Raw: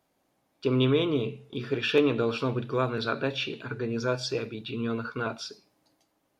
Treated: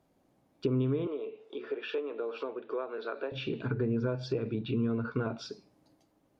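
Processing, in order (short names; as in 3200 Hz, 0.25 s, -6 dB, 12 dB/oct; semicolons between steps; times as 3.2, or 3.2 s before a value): compressor 12:1, threshold -31 dBFS, peak gain reduction 15 dB; tilt shelf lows +6 dB, about 660 Hz; treble ducked by the level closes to 2300 Hz, closed at -29.5 dBFS; 1.07–3.32 HPF 400 Hz 24 dB/oct; gain +1.5 dB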